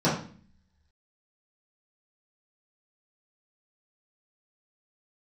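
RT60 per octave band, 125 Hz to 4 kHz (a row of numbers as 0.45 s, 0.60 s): 0.75 s, 0.80 s, 0.45 s, 0.40 s, 0.45 s, 0.45 s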